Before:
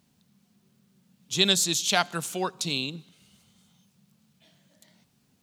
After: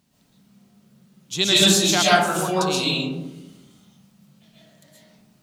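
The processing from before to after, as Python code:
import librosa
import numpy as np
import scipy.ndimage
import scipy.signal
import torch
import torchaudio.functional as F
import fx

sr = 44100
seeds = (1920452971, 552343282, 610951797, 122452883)

y = fx.rev_freeverb(x, sr, rt60_s=1.1, hf_ratio=0.3, predelay_ms=90, drr_db=-7.5)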